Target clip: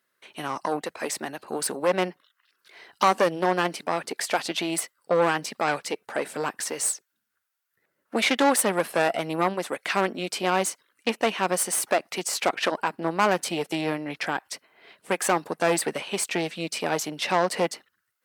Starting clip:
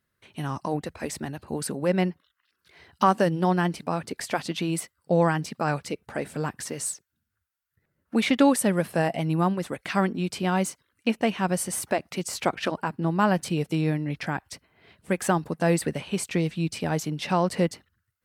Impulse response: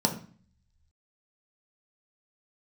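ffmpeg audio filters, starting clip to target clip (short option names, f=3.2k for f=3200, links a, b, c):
-af "aeval=exprs='0.447*(cos(1*acos(clip(val(0)/0.447,-1,1)))-cos(1*PI/2))+0.0562*(cos(4*acos(clip(val(0)/0.447,-1,1)))-cos(4*PI/2))+0.0708*(cos(5*acos(clip(val(0)/0.447,-1,1)))-cos(5*PI/2))+0.0316*(cos(8*acos(clip(val(0)/0.447,-1,1)))-cos(8*PI/2))':c=same,highpass=400,volume=10dB,asoftclip=hard,volume=-10dB"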